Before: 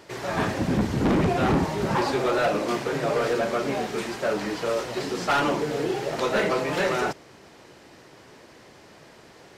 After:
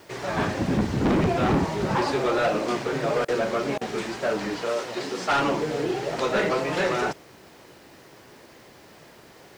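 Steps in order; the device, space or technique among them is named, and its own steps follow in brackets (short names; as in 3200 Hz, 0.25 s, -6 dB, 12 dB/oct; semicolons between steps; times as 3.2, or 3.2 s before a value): 4.62–5.31 HPF 250 Hz 6 dB/oct; worn cassette (LPF 9200 Hz 12 dB/oct; wow and flutter; level dips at 3.25/3.78, 31 ms -27 dB; white noise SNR 36 dB)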